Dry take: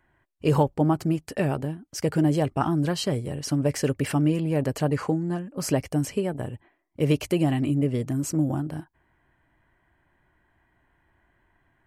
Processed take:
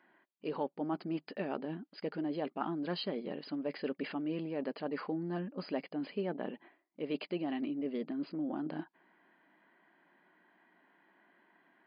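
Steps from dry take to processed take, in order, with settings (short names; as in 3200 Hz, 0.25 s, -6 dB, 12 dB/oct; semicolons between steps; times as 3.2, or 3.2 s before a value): reverse; compressor 6:1, threshold -33 dBFS, peak gain reduction 16.5 dB; reverse; brick-wall FIR band-pass 170–5000 Hz; gain +1 dB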